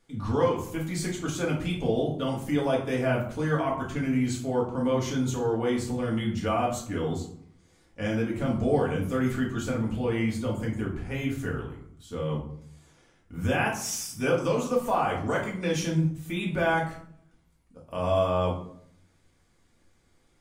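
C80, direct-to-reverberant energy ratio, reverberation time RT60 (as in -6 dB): 10.0 dB, -3.5 dB, 0.65 s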